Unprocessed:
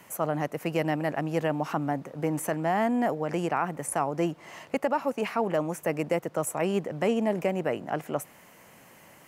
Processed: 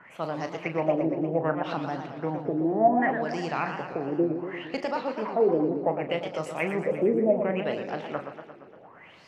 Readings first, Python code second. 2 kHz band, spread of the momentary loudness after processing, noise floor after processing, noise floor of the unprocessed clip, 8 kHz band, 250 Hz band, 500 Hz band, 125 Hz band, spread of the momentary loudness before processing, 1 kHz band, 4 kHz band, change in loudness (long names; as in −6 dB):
+1.0 dB, 10 LU, −51 dBFS, −54 dBFS, below −15 dB, +1.0 dB, +2.5 dB, −2.0 dB, 6 LU, +0.5 dB, 0.0 dB, +1.5 dB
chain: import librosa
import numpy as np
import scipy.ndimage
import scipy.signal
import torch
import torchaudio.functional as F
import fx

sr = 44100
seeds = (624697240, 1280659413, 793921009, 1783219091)

y = fx.filter_lfo_lowpass(x, sr, shape='sine', hz=0.67, low_hz=350.0, high_hz=5200.0, q=6.3)
y = fx.doubler(y, sr, ms=37.0, db=-10)
y = fx.echo_warbled(y, sr, ms=116, feedback_pct=65, rate_hz=2.8, cents=194, wet_db=-8.0)
y = y * librosa.db_to_amplitude(-4.0)